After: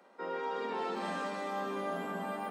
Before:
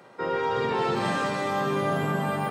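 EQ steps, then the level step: rippled Chebyshev high-pass 180 Hz, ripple 3 dB; -8.5 dB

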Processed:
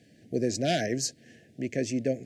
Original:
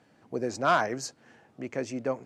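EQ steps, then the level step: elliptic band-stop 690–1700 Hz, stop band 40 dB; bell 950 Hz -10.5 dB 1.9 oct; +7.5 dB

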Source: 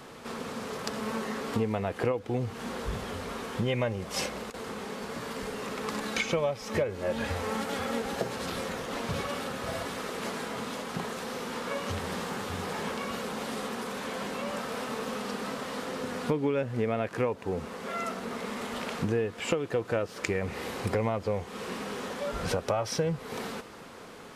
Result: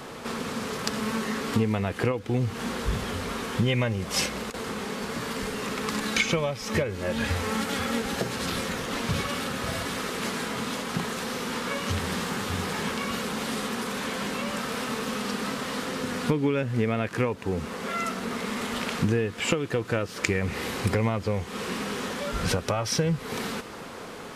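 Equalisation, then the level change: dynamic EQ 640 Hz, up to -8 dB, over -43 dBFS, Q 0.85; +7.0 dB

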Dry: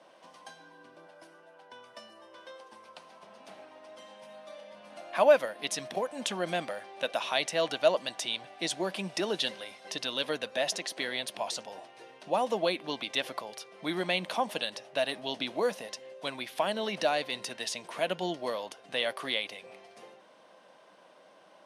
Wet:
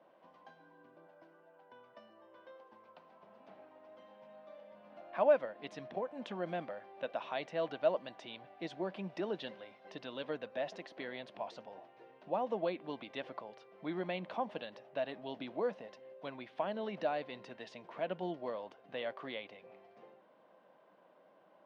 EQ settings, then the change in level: tape spacing loss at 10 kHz 39 dB; -4.0 dB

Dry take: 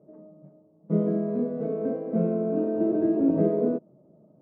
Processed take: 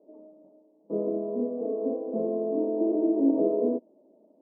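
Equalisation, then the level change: elliptic band-pass 250–970 Hz, stop band 40 dB; 0.0 dB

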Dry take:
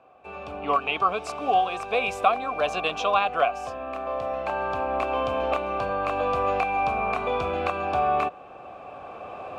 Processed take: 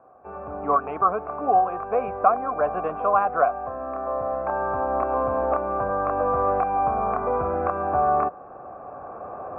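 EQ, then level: steep low-pass 1600 Hz 36 dB/oct; +2.5 dB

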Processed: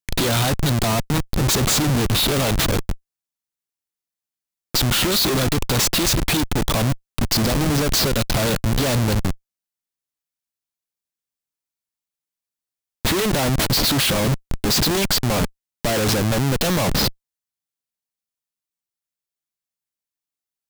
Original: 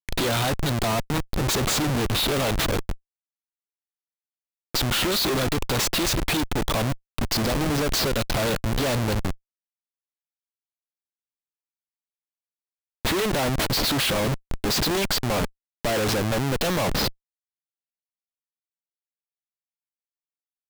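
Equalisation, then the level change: tone controls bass +10 dB, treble +4 dB; low shelf 170 Hz -8.5 dB; +2.5 dB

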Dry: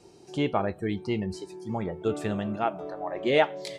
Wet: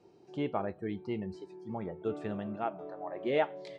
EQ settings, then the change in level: HPF 140 Hz 6 dB/oct; tape spacing loss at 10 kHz 23 dB; -5.0 dB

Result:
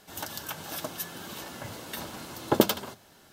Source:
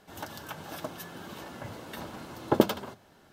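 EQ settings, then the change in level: high shelf 3100 Hz +11 dB; 0.0 dB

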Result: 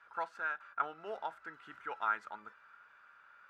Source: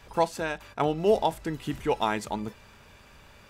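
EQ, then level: band-pass 1400 Hz, Q 9.7; +6.5 dB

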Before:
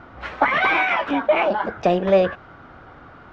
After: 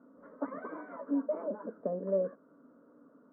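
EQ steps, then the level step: ladder band-pass 340 Hz, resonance 55%; air absorption 430 m; fixed phaser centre 520 Hz, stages 8; +2.0 dB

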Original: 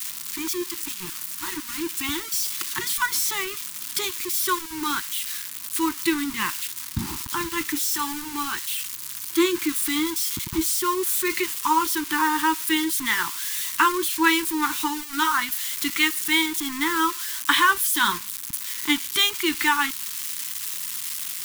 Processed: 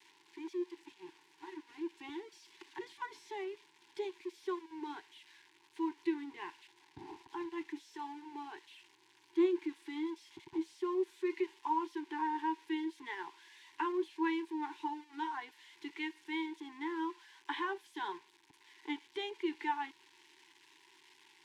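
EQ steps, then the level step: ladder band-pass 670 Hz, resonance 30%; low shelf 490 Hz +7 dB; fixed phaser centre 520 Hz, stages 4; +6.0 dB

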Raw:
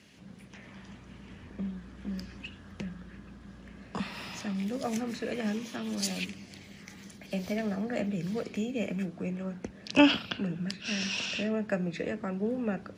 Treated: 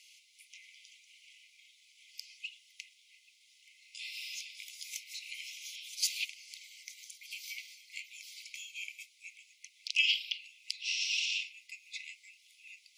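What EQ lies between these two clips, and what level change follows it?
dynamic EQ 8500 Hz, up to -5 dB, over -52 dBFS, Q 0.95; brick-wall FIR high-pass 2000 Hz; high shelf 2700 Hz +10 dB; -3.5 dB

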